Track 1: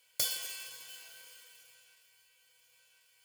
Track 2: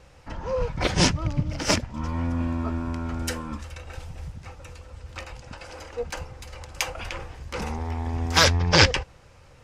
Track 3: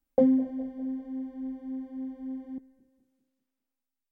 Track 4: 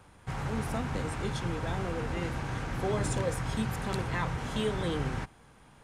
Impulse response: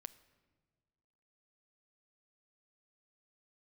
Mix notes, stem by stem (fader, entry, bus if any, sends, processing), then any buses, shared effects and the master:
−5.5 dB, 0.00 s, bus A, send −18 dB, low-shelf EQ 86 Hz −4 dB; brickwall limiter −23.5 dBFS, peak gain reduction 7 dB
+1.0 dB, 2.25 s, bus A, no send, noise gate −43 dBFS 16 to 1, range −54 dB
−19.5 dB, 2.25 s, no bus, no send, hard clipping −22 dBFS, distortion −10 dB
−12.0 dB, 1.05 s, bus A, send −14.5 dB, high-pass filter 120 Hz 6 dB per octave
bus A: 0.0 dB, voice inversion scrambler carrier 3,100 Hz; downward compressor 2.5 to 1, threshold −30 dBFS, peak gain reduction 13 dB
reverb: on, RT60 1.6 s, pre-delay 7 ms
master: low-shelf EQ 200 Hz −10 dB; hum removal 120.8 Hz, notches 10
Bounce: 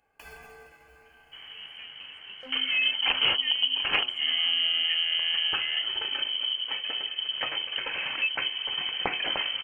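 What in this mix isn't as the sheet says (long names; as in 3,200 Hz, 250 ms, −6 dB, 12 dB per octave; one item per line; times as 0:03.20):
stem 1 −5.5 dB → +2.0 dB
stem 2 +1.0 dB → +13.0 dB
stem 4: missing high-pass filter 120 Hz 6 dB per octave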